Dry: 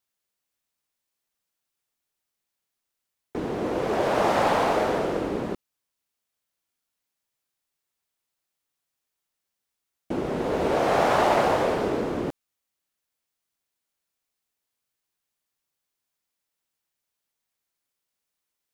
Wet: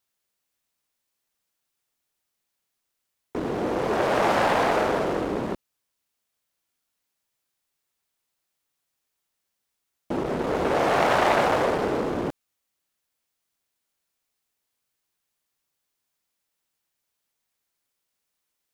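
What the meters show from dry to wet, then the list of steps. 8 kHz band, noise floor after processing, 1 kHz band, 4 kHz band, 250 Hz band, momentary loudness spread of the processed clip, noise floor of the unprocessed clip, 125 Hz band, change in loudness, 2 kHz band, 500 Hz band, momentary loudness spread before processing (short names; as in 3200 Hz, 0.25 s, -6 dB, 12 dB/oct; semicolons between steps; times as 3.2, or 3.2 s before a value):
+0.5 dB, -81 dBFS, +0.5 dB, +1.5 dB, +0.5 dB, 12 LU, -84 dBFS, 0.0 dB, +0.5 dB, +3.0 dB, 0.0 dB, 13 LU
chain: core saturation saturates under 1300 Hz; gain +3 dB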